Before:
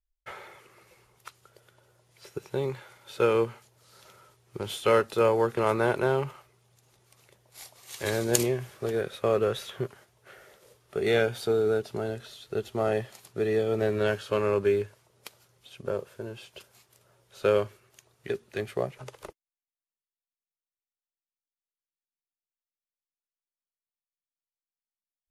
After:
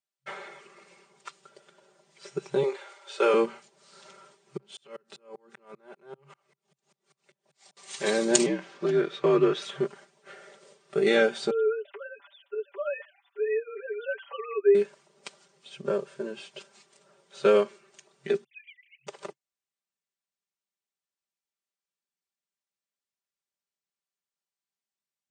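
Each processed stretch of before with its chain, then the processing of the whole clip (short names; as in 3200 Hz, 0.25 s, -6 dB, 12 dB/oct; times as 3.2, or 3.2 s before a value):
2.63–3.34 HPF 360 Hz 24 dB/oct + doubler 39 ms -11.5 dB
4.57–7.77 compressor 5:1, threshold -39 dBFS + dB-ramp tremolo swelling 5.1 Hz, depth 37 dB
8.46–9.62 LPF 5200 Hz + frequency shift -65 Hz
11.5–14.75 sine-wave speech + Bessel high-pass 870 Hz + comb 7.1 ms, depth 75%
18.44–19.07 sine-wave speech + steep high-pass 2000 Hz 96 dB/oct
whole clip: FFT band-pass 130–9200 Hz; comb 5.1 ms, depth 100%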